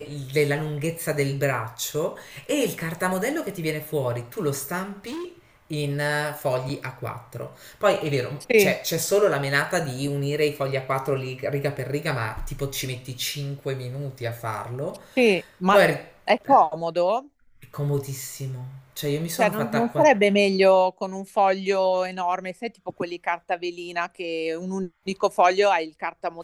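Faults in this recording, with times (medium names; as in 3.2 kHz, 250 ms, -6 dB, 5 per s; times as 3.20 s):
4.83–5.25 s: clipped -30 dBFS
6.69–6.70 s: dropout 5.7 ms
9.69 s: dropout 2.7 ms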